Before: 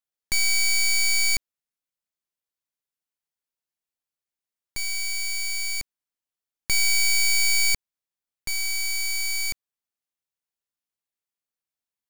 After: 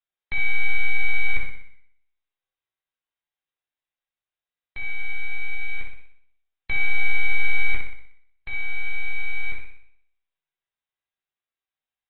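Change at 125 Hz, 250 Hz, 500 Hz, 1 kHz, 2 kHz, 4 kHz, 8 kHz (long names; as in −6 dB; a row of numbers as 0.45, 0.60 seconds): +9.5 dB, can't be measured, +1.0 dB, +2.0 dB, +1.5 dB, −16.0 dB, below −40 dB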